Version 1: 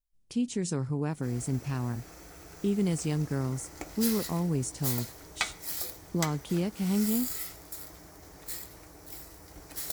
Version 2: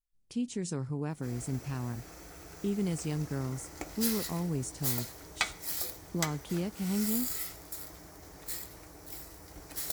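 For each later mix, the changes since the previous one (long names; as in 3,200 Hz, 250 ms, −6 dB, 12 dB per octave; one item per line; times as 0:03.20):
speech −4.0 dB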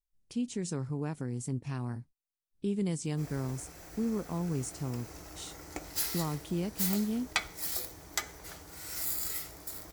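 background: entry +1.95 s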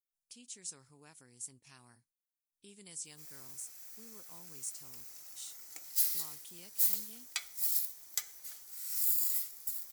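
master: add first-order pre-emphasis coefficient 0.97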